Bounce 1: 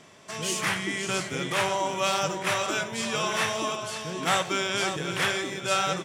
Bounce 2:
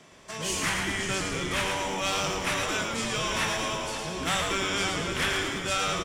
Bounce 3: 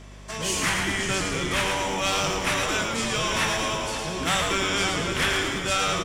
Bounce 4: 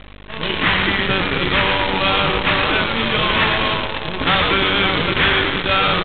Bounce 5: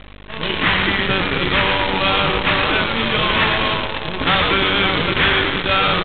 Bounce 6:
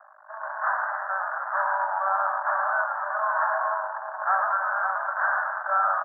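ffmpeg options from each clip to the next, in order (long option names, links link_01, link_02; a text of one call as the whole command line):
ffmpeg -i in.wav -filter_complex "[0:a]asplit=9[link_01][link_02][link_03][link_04][link_05][link_06][link_07][link_08][link_09];[link_02]adelay=112,afreqshift=-100,volume=-4.5dB[link_10];[link_03]adelay=224,afreqshift=-200,volume=-9.4dB[link_11];[link_04]adelay=336,afreqshift=-300,volume=-14.3dB[link_12];[link_05]adelay=448,afreqshift=-400,volume=-19.1dB[link_13];[link_06]adelay=560,afreqshift=-500,volume=-24dB[link_14];[link_07]adelay=672,afreqshift=-600,volume=-28.9dB[link_15];[link_08]adelay=784,afreqshift=-700,volume=-33.8dB[link_16];[link_09]adelay=896,afreqshift=-800,volume=-38.7dB[link_17];[link_01][link_10][link_11][link_12][link_13][link_14][link_15][link_16][link_17]amix=inputs=9:normalize=0,acrossover=split=270|1400|1900[link_18][link_19][link_20][link_21];[link_19]asoftclip=type=hard:threshold=-30.5dB[link_22];[link_18][link_22][link_20][link_21]amix=inputs=4:normalize=0,volume=-1.5dB" out.wav
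ffmpeg -i in.wav -af "aeval=exprs='val(0)+0.00447*(sin(2*PI*50*n/s)+sin(2*PI*2*50*n/s)/2+sin(2*PI*3*50*n/s)/3+sin(2*PI*4*50*n/s)/4+sin(2*PI*5*50*n/s)/5)':channel_layout=same,volume=3.5dB" out.wav
ffmpeg -i in.wav -af "aresample=8000,acrusher=bits=5:dc=4:mix=0:aa=0.000001,aresample=44100,bandreject=frequency=690:width=12,volume=8dB" out.wav
ffmpeg -i in.wav -af anull out.wav
ffmpeg -i in.wav -af "asuperpass=centerf=1000:order=20:qfactor=0.96,volume=-3dB" out.wav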